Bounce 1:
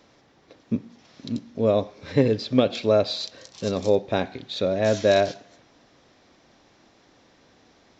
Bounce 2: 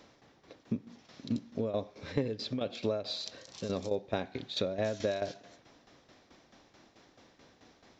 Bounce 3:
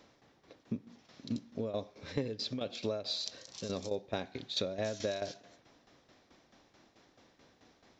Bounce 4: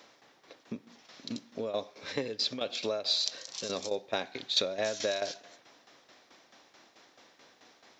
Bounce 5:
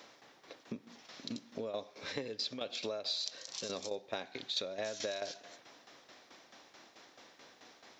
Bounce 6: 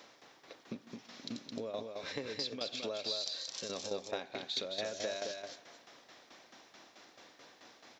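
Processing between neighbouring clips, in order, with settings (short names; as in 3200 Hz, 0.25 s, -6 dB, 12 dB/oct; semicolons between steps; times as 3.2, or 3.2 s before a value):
compressor 5:1, threshold -27 dBFS, peak gain reduction 13 dB; tremolo saw down 4.6 Hz, depth 70%
dynamic EQ 5900 Hz, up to +7 dB, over -56 dBFS, Q 0.78; gain -3.5 dB
HPF 730 Hz 6 dB/oct; gain +8 dB
compressor 2:1, threshold -42 dBFS, peak gain reduction 11 dB; gain +1 dB
echo 0.216 s -4.5 dB; gain -1 dB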